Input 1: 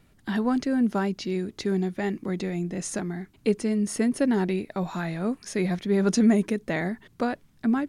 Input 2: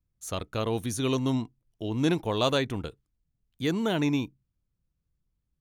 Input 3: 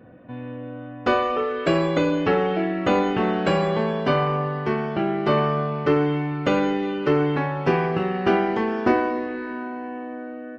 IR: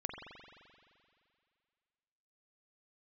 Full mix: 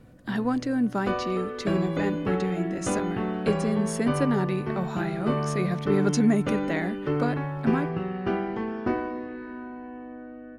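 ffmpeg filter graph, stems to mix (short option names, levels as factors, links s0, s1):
-filter_complex "[0:a]volume=0.794[s0];[2:a]lowshelf=f=240:g=12,aeval=exprs='val(0)+0.00316*(sin(2*PI*50*n/s)+sin(2*PI*2*50*n/s)/2+sin(2*PI*3*50*n/s)/3+sin(2*PI*4*50*n/s)/4+sin(2*PI*5*50*n/s)/5)':c=same,volume=0.266[s1];[s0][s1]amix=inputs=2:normalize=0,equalizer=f=1300:w=1.5:g=2.5"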